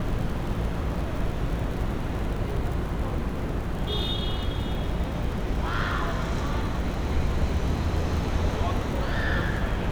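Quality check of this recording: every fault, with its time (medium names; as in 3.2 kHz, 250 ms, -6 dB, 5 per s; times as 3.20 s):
crackle 63 per s -33 dBFS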